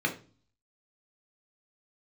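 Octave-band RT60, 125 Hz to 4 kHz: 0.70 s, 0.60 s, 0.40 s, 0.35 s, 0.30 s, 0.40 s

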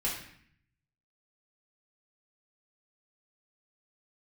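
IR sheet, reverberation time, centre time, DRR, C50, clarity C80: 0.60 s, 39 ms, -6.5 dB, 4.5 dB, 8.0 dB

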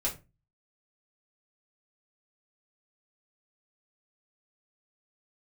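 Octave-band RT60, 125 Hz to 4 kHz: 0.55 s, 0.40 s, 0.30 s, 0.25 s, 0.25 s, 0.20 s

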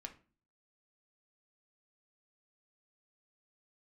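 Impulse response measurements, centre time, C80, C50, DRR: 8 ms, 19.5 dB, 13.5 dB, 3.5 dB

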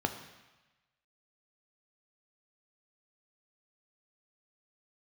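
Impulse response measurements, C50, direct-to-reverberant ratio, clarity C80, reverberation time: 9.5 dB, 6.0 dB, 11.5 dB, 1.1 s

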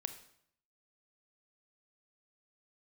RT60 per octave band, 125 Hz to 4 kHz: 0.85 s, 0.75 s, 0.65 s, 0.65 s, 0.60 s, 0.60 s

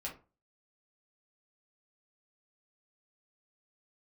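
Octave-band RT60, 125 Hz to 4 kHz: 0.40 s, 0.35 s, 0.35 s, 0.35 s, 0.25 s, 0.20 s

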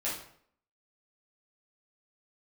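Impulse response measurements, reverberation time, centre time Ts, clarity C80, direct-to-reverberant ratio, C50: 0.60 s, 40 ms, 8.5 dB, -8.5 dB, 3.5 dB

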